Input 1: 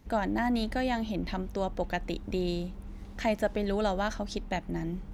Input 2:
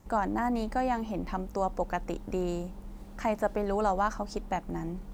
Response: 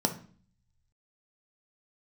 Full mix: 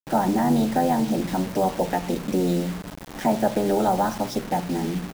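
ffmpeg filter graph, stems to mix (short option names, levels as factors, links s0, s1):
-filter_complex "[0:a]acrossover=split=280|820[s0][s1][s2];[s0]acompressor=threshold=0.00708:ratio=4[s3];[s1]acompressor=threshold=0.0178:ratio=4[s4];[s2]acompressor=threshold=0.0158:ratio=4[s5];[s3][s4][s5]amix=inputs=3:normalize=0,aeval=exprs='val(0)*sin(2*PI*91*n/s)':c=same,volume=1.19,asplit=2[s6][s7];[s7]volume=0.473[s8];[1:a]equalizer=f=2600:t=o:w=1.3:g=-6.5,adelay=5.3,volume=0.668,asplit=3[s9][s10][s11];[s10]volume=0.531[s12];[s11]apad=whole_len=226288[s13];[s6][s13]sidechaincompress=threshold=0.00891:ratio=3:attack=50:release=107[s14];[2:a]atrim=start_sample=2205[s15];[s8][s12]amix=inputs=2:normalize=0[s16];[s16][s15]afir=irnorm=-1:irlink=0[s17];[s14][s9][s17]amix=inputs=3:normalize=0,acrusher=bits=5:mix=0:aa=0.000001"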